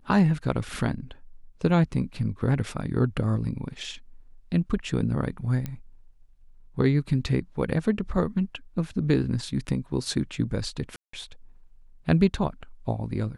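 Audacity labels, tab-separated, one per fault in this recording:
5.660000	5.660000	pop -19 dBFS
10.960000	11.130000	gap 0.174 s

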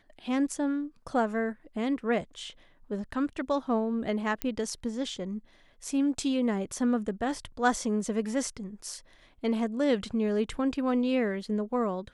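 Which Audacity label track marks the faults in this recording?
4.420000	4.420000	pop -14 dBFS

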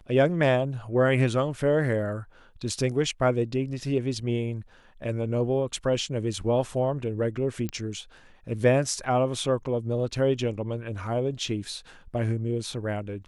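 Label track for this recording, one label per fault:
7.690000	7.690000	pop -17 dBFS

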